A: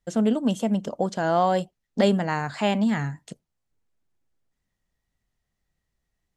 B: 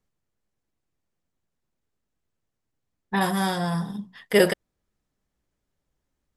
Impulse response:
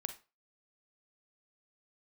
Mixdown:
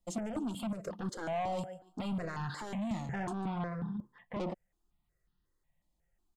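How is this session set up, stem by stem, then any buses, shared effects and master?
-2.0 dB, 0.00 s, no send, echo send -16.5 dB, notch 5700 Hz, Q 10; limiter -17.5 dBFS, peak gain reduction 10 dB
-3.0 dB, 0.00 s, no send, no echo send, de-esser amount 75%; Bessel low-pass 1100 Hz, order 2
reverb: off
echo: feedback echo 0.144 s, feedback 25%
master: comb 5.7 ms, depth 36%; soft clip -29 dBFS, distortion -8 dB; step phaser 5.5 Hz 430–2200 Hz

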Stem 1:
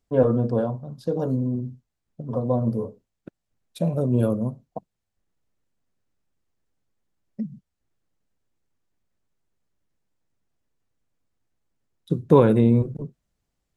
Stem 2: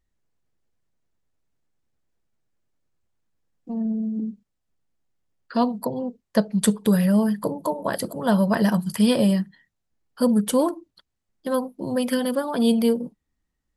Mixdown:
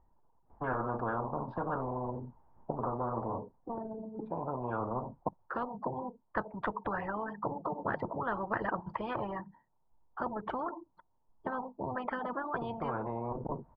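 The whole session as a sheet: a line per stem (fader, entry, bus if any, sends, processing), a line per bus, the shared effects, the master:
0.0 dB, 0.50 s, no send, auto duck -19 dB, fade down 0.50 s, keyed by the second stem
-8.0 dB, 0.00 s, no send, reverb removal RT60 1.4 s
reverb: off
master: ladder low-pass 980 Hz, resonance 80%; spectral compressor 10:1

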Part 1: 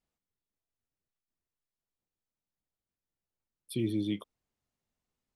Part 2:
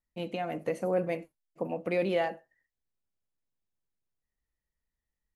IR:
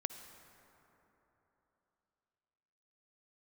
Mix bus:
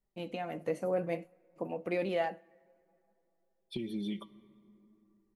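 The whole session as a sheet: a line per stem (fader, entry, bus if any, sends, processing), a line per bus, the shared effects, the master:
+1.5 dB, 0.00 s, send -6 dB, comb 5.1 ms, depth 89%; compressor 10:1, threshold -34 dBFS, peak gain reduction 10 dB; low-pass opened by the level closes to 800 Hz, open at -35 dBFS
0.0 dB, 0.00 s, send -20 dB, dry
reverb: on, RT60 3.5 s, pre-delay 48 ms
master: flange 0.56 Hz, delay 2 ms, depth 5.4 ms, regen +71%

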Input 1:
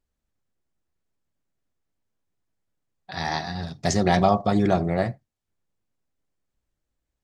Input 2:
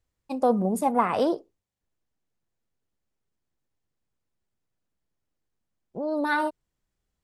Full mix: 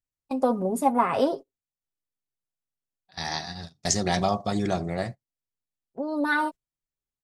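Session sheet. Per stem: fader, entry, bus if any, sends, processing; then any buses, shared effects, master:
-6.0 dB, 0.00 s, no send, bell 8300 Hz +12.5 dB 2 oct
-0.5 dB, 0.00 s, no send, comb 7.4 ms, depth 56%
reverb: off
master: gate -35 dBFS, range -17 dB

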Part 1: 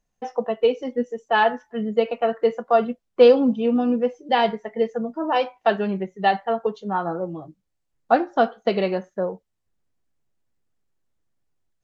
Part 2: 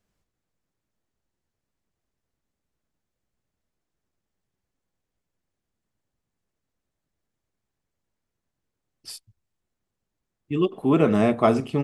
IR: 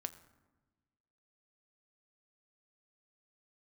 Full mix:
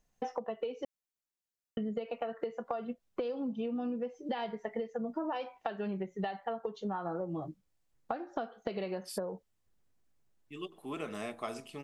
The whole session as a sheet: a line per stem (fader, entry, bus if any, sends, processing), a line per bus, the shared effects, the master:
+0.5 dB, 0.00 s, muted 0.85–1.77, no send, compressor 6:1, threshold -27 dBFS, peak gain reduction 17 dB
-15.0 dB, 0.00 s, no send, tilt +3.5 dB/oct; de-hum 165.3 Hz, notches 6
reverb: off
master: compressor 5:1, threshold -33 dBFS, peak gain reduction 10 dB

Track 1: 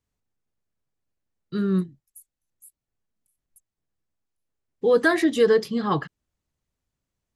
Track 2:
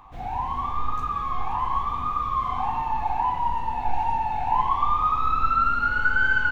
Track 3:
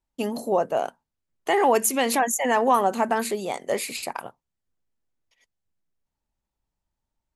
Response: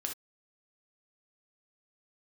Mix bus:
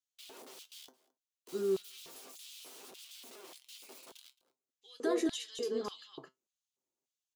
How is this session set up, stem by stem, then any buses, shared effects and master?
-6.0 dB, 0.00 s, no send, echo send -5.5 dB, bell 6600 Hz +9 dB 0.44 oct; limiter -16 dBFS, peak gain reduction 7 dB
off
-9.0 dB, 0.00 s, no send, echo send -22 dB, tilt -2.5 dB/oct; compressor 2:1, threshold -28 dBFS, peak gain reduction 8.5 dB; wrapped overs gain 33.5 dB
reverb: off
echo: echo 0.218 s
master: resonator 130 Hz, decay 0.16 s, harmonics all, mix 70%; LFO high-pass square 1.7 Hz 360–3200 Hz; bell 1800 Hz -8 dB 0.71 oct

